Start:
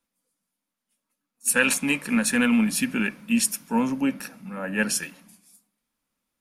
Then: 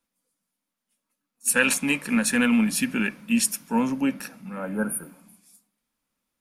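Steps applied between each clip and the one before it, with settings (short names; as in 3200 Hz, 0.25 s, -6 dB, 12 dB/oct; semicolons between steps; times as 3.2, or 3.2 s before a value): spectral repair 4.62–5.36, 1600–9000 Hz both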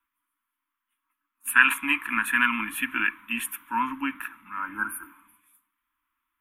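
EQ curve 100 Hz 0 dB, 160 Hz -25 dB, 320 Hz +2 dB, 450 Hz -28 dB, 720 Hz -18 dB, 1000 Hz +13 dB, 1900 Hz +8 dB, 3400 Hz +2 dB, 4800 Hz -29 dB, 13000 Hz +4 dB; gain -3.5 dB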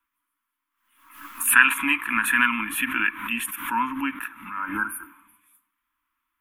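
backwards sustainer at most 80 dB/s; gain +1.5 dB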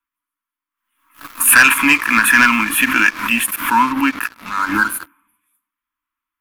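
sample leveller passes 3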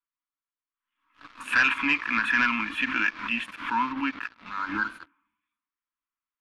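ladder low-pass 5300 Hz, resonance 20%; gain -7.5 dB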